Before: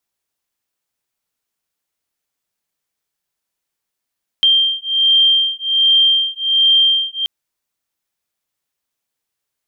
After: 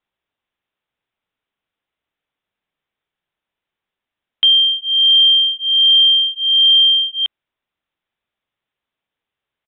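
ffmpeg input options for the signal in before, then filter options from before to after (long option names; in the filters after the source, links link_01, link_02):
-f lavfi -i "aevalsrc='0.2*(sin(2*PI*3170*t)+sin(2*PI*3171.3*t))':duration=2.83:sample_rate=44100"
-filter_complex "[0:a]asplit=2[link_01][link_02];[link_02]asoftclip=type=hard:threshold=-17.5dB,volume=-10dB[link_03];[link_01][link_03]amix=inputs=2:normalize=0,aresample=8000,aresample=44100"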